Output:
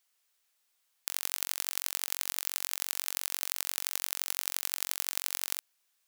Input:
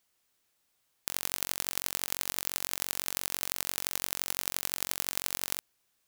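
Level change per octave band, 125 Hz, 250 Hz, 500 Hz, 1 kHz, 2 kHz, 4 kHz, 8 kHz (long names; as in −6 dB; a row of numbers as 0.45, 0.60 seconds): below −15 dB, below −10 dB, −7.0 dB, −3.5 dB, −1.0 dB, −0.5 dB, 0.0 dB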